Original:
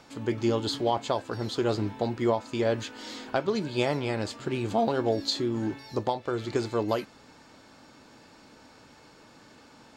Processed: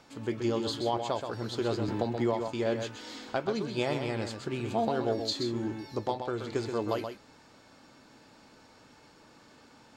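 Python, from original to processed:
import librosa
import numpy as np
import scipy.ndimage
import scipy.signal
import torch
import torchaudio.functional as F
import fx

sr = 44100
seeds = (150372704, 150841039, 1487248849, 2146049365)

p1 = x + fx.echo_single(x, sr, ms=128, db=-7.0, dry=0)
p2 = fx.band_squash(p1, sr, depth_pct=70, at=(1.88, 2.48))
y = p2 * 10.0 ** (-4.0 / 20.0)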